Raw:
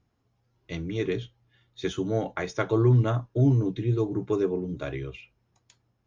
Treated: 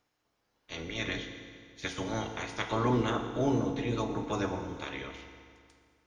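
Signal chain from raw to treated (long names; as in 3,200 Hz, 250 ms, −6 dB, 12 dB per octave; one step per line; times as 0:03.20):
ceiling on every frequency bin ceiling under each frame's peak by 24 dB
feedback delay network reverb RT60 2.2 s, low-frequency decay 1×, high-frequency decay 0.85×, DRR 5 dB
level −7.5 dB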